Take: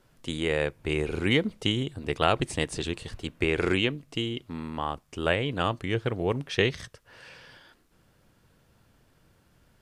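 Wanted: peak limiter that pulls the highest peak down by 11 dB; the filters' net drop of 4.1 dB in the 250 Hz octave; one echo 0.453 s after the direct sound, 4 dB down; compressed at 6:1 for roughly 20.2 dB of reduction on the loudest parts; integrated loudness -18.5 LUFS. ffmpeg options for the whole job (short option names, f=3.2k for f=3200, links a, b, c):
-af "equalizer=f=250:t=o:g=-6,acompressor=threshold=-42dB:ratio=6,alimiter=level_in=11dB:limit=-24dB:level=0:latency=1,volume=-11dB,aecho=1:1:453:0.631,volume=28.5dB"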